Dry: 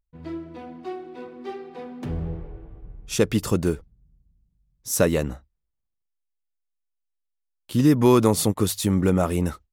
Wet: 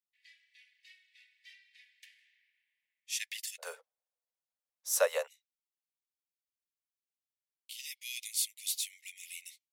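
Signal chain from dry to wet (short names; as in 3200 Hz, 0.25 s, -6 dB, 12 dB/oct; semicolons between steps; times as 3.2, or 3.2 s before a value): steep high-pass 1800 Hz 96 dB/oct, from 3.58 s 490 Hz, from 5.26 s 2100 Hz; gain -5.5 dB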